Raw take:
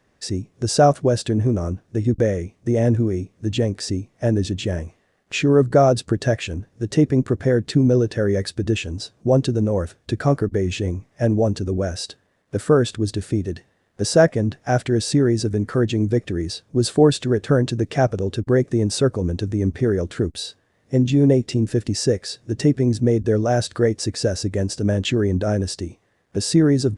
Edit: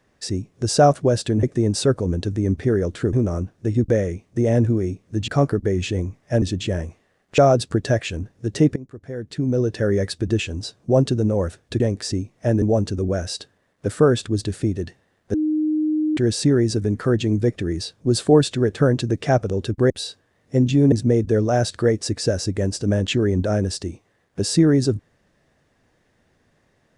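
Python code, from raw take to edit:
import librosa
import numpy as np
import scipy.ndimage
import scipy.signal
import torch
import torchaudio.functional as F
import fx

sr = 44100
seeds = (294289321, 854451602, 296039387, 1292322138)

y = fx.edit(x, sr, fx.swap(start_s=3.58, length_s=0.82, other_s=10.17, other_length_s=1.14),
    fx.cut(start_s=5.36, length_s=0.39),
    fx.fade_in_from(start_s=7.13, length_s=1.04, curve='qua', floor_db=-20.0),
    fx.bleep(start_s=14.03, length_s=0.83, hz=308.0, db=-17.5),
    fx.move(start_s=18.59, length_s=1.7, to_s=1.43),
    fx.cut(start_s=21.31, length_s=1.58), tone=tone)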